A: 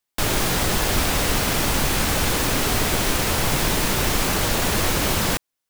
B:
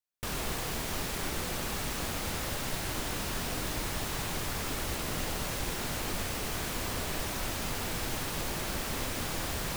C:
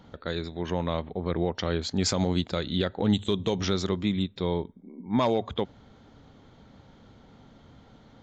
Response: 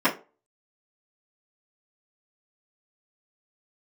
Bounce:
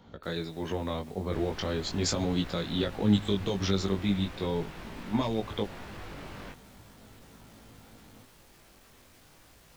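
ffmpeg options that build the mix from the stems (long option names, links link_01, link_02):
-filter_complex "[0:a]lowpass=3000,adelay=1150,volume=-18dB[link_01];[1:a]asoftclip=type=tanh:threshold=-34dB,alimiter=level_in=21.5dB:limit=-24dB:level=0:latency=1,volume=-21.5dB,volume=-4.5dB[link_02];[2:a]volume=1dB[link_03];[link_01][link_02][link_03]amix=inputs=3:normalize=0,acrossover=split=350|3000[link_04][link_05][link_06];[link_05]acompressor=threshold=-28dB:ratio=6[link_07];[link_04][link_07][link_06]amix=inputs=3:normalize=0,flanger=delay=18:depth=2.7:speed=0.4"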